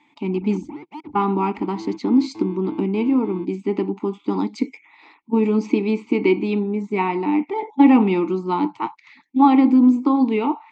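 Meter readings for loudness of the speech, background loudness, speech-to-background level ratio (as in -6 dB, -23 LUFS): -20.0 LUFS, -37.0 LUFS, 17.0 dB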